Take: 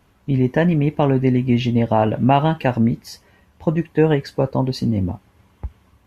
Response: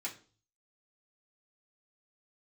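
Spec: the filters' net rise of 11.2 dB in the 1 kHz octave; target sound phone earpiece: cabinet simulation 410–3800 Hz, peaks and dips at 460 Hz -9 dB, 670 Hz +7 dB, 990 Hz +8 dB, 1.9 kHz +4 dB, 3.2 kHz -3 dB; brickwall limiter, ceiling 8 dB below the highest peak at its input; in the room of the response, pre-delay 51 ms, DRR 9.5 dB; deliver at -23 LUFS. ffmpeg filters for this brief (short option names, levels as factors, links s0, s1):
-filter_complex "[0:a]equalizer=f=1000:t=o:g=7.5,alimiter=limit=0.422:level=0:latency=1,asplit=2[s0][s1];[1:a]atrim=start_sample=2205,adelay=51[s2];[s1][s2]afir=irnorm=-1:irlink=0,volume=0.316[s3];[s0][s3]amix=inputs=2:normalize=0,highpass=410,equalizer=f=460:t=q:w=4:g=-9,equalizer=f=670:t=q:w=4:g=7,equalizer=f=990:t=q:w=4:g=8,equalizer=f=1900:t=q:w=4:g=4,equalizer=f=3200:t=q:w=4:g=-3,lowpass=f=3800:w=0.5412,lowpass=f=3800:w=1.3066,volume=0.794"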